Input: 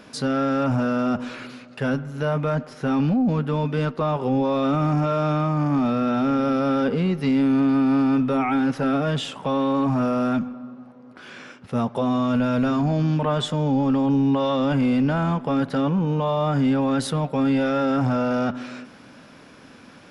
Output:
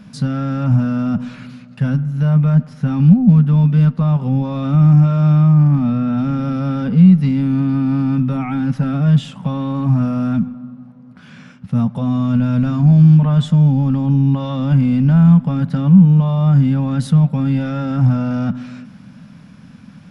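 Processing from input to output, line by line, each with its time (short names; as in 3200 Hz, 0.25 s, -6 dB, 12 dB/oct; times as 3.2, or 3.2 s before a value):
5.53–6.17 high shelf 8700 Hz -> 5100 Hz -10.5 dB
whole clip: resonant low shelf 260 Hz +11.5 dB, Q 3; gain -3 dB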